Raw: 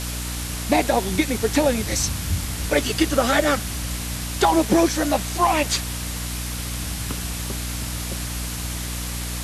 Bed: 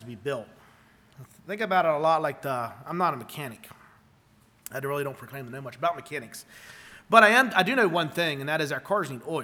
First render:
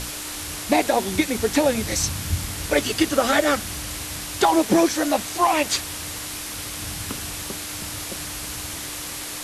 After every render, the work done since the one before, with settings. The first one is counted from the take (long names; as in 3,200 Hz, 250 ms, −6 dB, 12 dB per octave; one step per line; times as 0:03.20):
mains-hum notches 60/120/180/240 Hz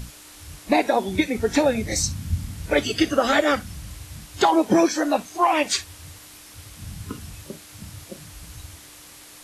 noise reduction from a noise print 13 dB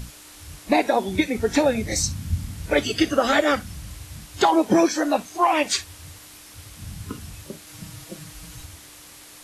0:07.66–0:08.65: comb filter 6.3 ms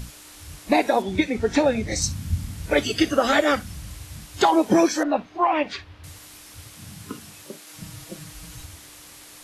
0:01.02–0:02.02: high-frequency loss of the air 54 metres
0:05.03–0:06.04: high-frequency loss of the air 320 metres
0:06.67–0:07.76: high-pass filter 110 Hz → 290 Hz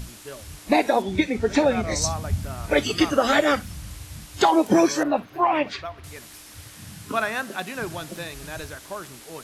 mix in bed −9 dB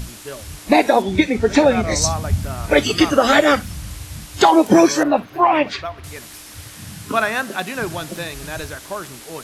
level +6 dB
brickwall limiter −1 dBFS, peak gain reduction 1 dB